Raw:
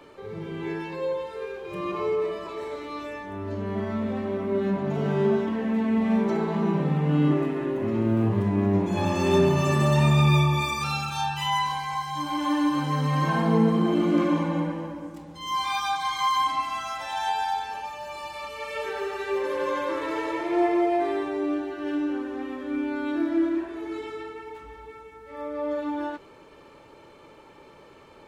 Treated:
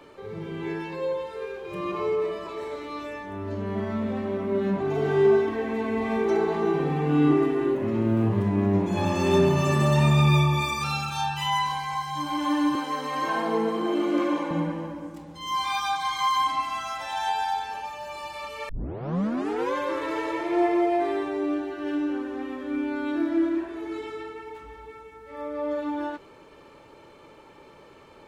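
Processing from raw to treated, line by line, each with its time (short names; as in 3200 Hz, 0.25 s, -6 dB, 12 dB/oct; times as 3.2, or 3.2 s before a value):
4.8–7.75 comb 2.6 ms, depth 87%
12.75–14.51 HPF 290 Hz 24 dB/oct
18.69 tape start 1.05 s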